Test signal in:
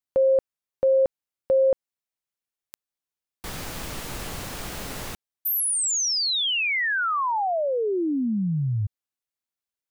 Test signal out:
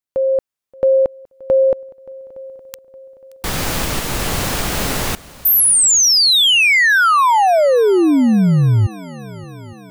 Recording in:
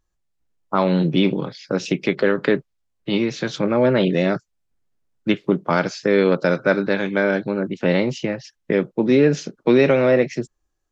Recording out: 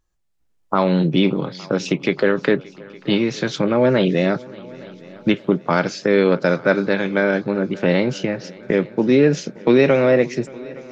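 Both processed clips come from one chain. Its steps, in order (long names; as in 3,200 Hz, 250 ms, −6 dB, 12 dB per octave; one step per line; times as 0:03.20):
camcorder AGC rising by 7 dB per second
on a send: echo machine with several playback heads 288 ms, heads second and third, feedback 51%, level −23 dB
on the sum: level +1 dB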